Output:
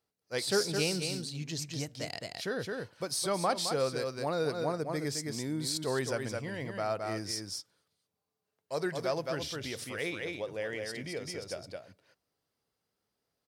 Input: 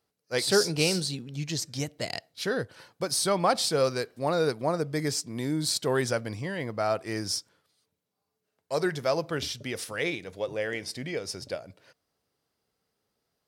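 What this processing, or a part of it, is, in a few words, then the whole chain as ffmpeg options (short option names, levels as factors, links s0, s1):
ducked delay: -filter_complex "[0:a]asplit=3[s0][s1][s2];[s1]adelay=215,volume=0.708[s3];[s2]apad=whole_len=603831[s4];[s3][s4]sidechaincompress=threshold=0.0251:ratio=8:attack=25:release=114[s5];[s0][s5]amix=inputs=2:normalize=0,volume=0.501"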